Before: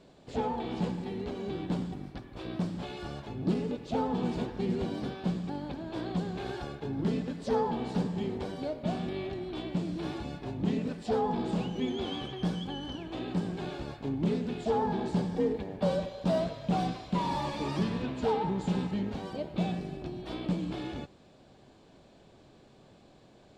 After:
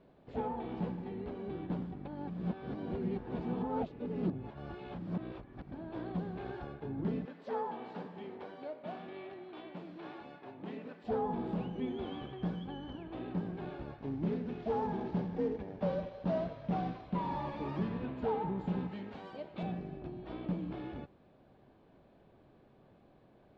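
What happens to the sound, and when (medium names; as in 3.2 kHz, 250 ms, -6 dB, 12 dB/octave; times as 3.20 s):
2.05–5.72 s: reverse
7.25–11.04 s: frequency weighting A
13.98–17.02 s: CVSD coder 32 kbps
18.91–19.63 s: tilt EQ +3 dB/octave
whole clip: low-pass 2.1 kHz 12 dB/octave; trim -5 dB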